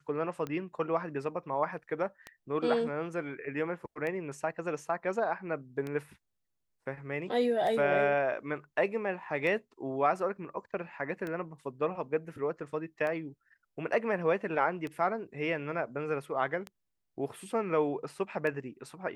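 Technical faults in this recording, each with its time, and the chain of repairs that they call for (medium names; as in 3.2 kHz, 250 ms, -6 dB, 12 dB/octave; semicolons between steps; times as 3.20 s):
tick 33 1/3 rpm -24 dBFS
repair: de-click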